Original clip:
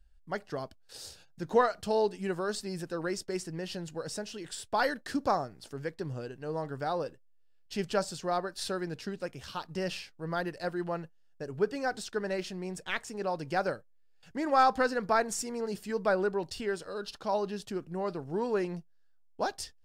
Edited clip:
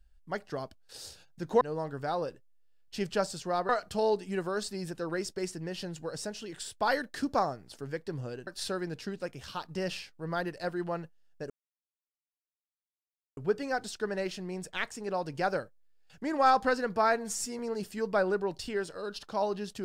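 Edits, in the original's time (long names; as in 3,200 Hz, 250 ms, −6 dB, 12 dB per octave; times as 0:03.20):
0:06.39–0:08.47: move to 0:01.61
0:11.50: splice in silence 1.87 s
0:15.09–0:15.51: time-stretch 1.5×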